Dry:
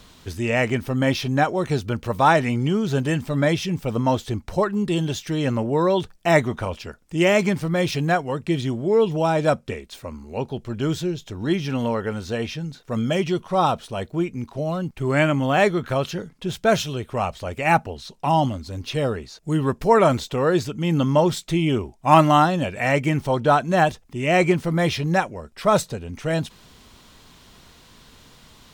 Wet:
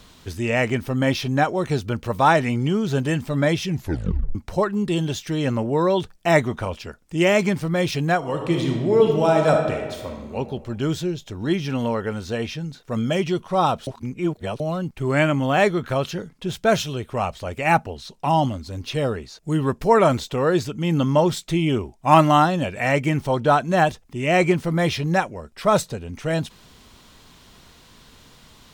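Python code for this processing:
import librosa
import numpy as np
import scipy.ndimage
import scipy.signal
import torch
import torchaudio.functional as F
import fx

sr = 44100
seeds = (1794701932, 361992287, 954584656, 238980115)

y = fx.reverb_throw(x, sr, start_s=8.17, length_s=2.19, rt60_s=1.4, drr_db=2.0)
y = fx.edit(y, sr, fx.tape_stop(start_s=3.68, length_s=0.67),
    fx.reverse_span(start_s=13.87, length_s=0.73), tone=tone)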